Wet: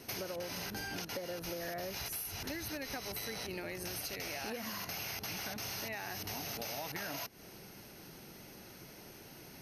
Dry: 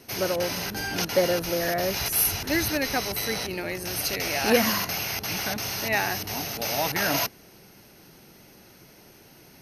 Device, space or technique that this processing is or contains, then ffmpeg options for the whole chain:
serial compression, peaks first: -af "acompressor=threshold=-32dB:ratio=6,acompressor=threshold=-38dB:ratio=3,volume=-1dB"

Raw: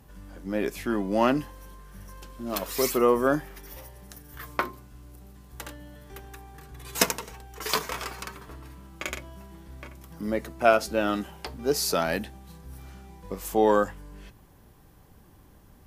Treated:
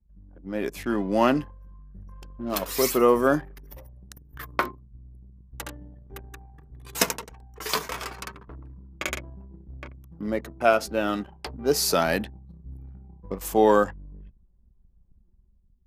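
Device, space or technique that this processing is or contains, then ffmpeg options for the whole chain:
voice memo with heavy noise removal: -af "anlmdn=0.251,dynaudnorm=f=200:g=7:m=7dB,volume=-3.5dB"

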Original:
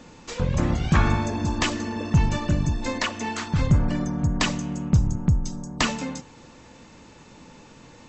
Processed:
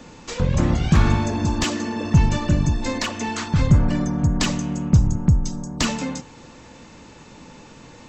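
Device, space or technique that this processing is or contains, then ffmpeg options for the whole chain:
one-band saturation: -filter_complex "[0:a]asettb=1/sr,asplit=3[a][b][c];[a]atrim=end=1.644[d];[b]atrim=start=1.64:end=2.04,asetpts=PTS-STARTPTS,afade=t=in:d=0.004:c=qsin,afade=t=out:st=0.396:d=0.004:c=qsin,highpass=130[e];[c]atrim=start=2.036[f];[d][e]acrossfade=d=0.004:c1=hsin:c2=qsin[g];[g][f]acrossfade=d=0.004:c1=qsin:c2=hsin,acrossover=split=400|3700[h][i][j];[i]asoftclip=type=tanh:threshold=-28dB[k];[h][k][j]amix=inputs=3:normalize=0,volume=4dB"

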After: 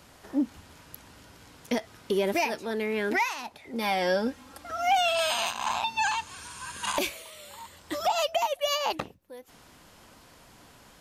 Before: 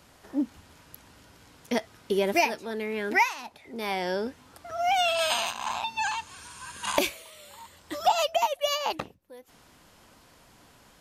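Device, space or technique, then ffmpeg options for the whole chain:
soft clipper into limiter: -filter_complex "[0:a]asoftclip=type=tanh:threshold=-13.5dB,alimiter=limit=-20.5dB:level=0:latency=1:release=118,asettb=1/sr,asplit=3[a][b][c];[a]atrim=end=3.734[d];[b]atrim=start=3.73:end=4.97,asetpts=PTS-STARTPTS,afade=t=in:d=0.004:c=qsin,afade=t=out:st=1.236:d=0.004:c=qsin,aecho=1:1:3.7:0.66,atrim=end_sample=54684[e];[c]atrim=start=4.966[f];[d][e]acrossfade=d=0.004:c1=hsin:c2=qsin[g];[g][f]acrossfade=d=0.004:c1=qsin:c2=hsin,volume=2.5dB"

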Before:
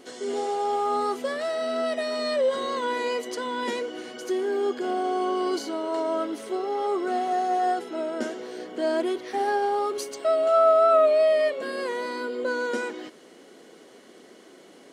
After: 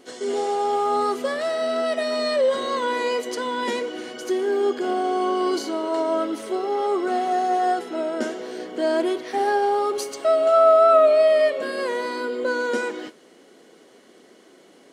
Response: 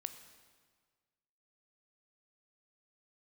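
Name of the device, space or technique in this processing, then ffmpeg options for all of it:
keyed gated reverb: -filter_complex "[0:a]asplit=3[a][b][c];[1:a]atrim=start_sample=2205[d];[b][d]afir=irnorm=-1:irlink=0[e];[c]apad=whole_len=658239[f];[e][f]sidechaingate=range=-33dB:threshold=-40dB:ratio=16:detection=peak,volume=1dB[g];[a][g]amix=inputs=2:normalize=0,volume=-1.5dB"

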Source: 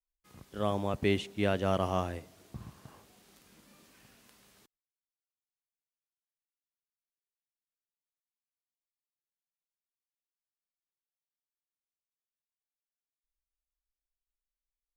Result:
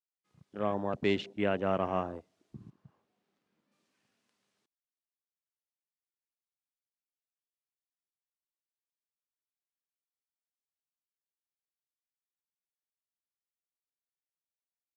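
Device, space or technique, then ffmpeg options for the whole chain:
over-cleaned archive recording: -filter_complex "[0:a]highpass=150,lowpass=7.8k,afwtdn=0.00794,asettb=1/sr,asplit=3[a][b][c];[a]atrim=end=2.704[d];[b]atrim=start=2.7:end=3.72,asetpts=PTS-STARTPTS,afade=t=in:d=0.004:c=qsin,afade=t=out:st=1.016:d=0.004:c=qsin,lowpass=f=1.9k:p=1[e];[c]atrim=start=3.716[f];[d][e]acrossfade=d=0.004:c1=hsin:c2=qsin[g];[g][f]acrossfade=d=0.004:c1=qsin:c2=hsin"

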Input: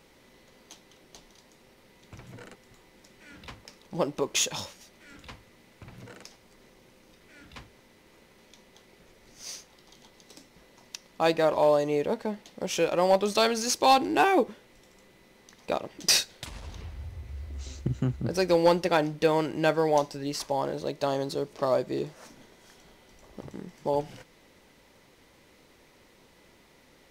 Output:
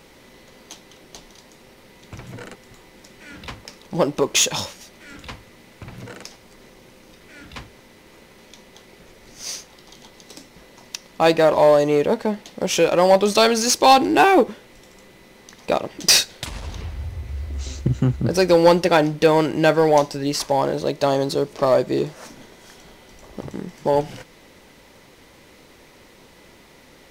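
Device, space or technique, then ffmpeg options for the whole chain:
parallel distortion: -filter_complex "[0:a]asplit=2[a][b];[b]asoftclip=type=hard:threshold=-23.5dB,volume=-6dB[c];[a][c]amix=inputs=2:normalize=0,volume=6dB"

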